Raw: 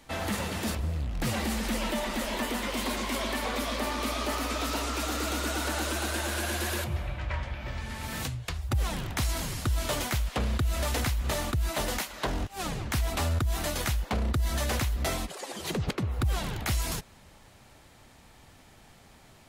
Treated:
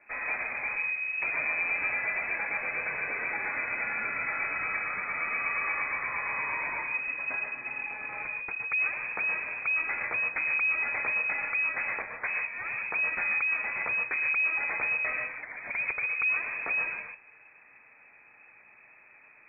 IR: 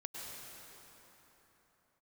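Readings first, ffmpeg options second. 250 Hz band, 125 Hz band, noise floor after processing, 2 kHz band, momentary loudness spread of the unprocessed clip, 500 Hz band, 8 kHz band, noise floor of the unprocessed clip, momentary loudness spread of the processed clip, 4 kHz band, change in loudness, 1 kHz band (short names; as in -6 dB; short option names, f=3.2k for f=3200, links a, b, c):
-19.0 dB, under -25 dB, -57 dBFS, +9.5 dB, 5 LU, -9.5 dB, under -40 dB, -55 dBFS, 7 LU, under -40 dB, +2.0 dB, -2.5 dB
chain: -filter_complex "[1:a]atrim=start_sample=2205,atrim=end_sample=6174,asetrate=39690,aresample=44100[a];[0:a][a]afir=irnorm=-1:irlink=0,lowpass=f=2.2k:t=q:w=0.5098,lowpass=f=2.2k:t=q:w=0.6013,lowpass=f=2.2k:t=q:w=0.9,lowpass=f=2.2k:t=q:w=2.563,afreqshift=-2600,volume=3dB"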